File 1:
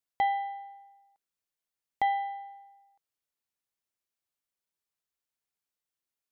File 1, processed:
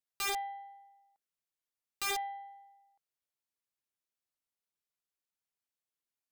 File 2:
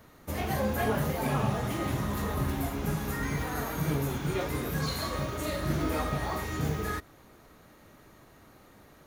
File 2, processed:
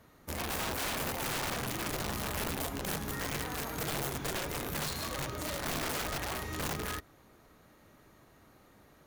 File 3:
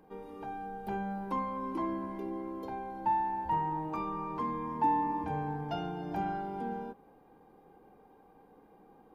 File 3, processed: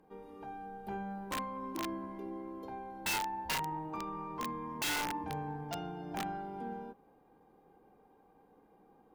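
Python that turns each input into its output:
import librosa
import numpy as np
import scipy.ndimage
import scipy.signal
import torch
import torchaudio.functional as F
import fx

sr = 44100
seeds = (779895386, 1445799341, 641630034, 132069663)

y = fx.cheby_harmonics(x, sr, harmonics=(2, 3, 5, 7), levels_db=(-22, -28, -30, -30), full_scale_db=-16.0)
y = (np.mod(10.0 ** (26.0 / 20.0) * y + 1.0, 2.0) - 1.0) / 10.0 ** (26.0 / 20.0)
y = y * 10.0 ** (-3.0 / 20.0)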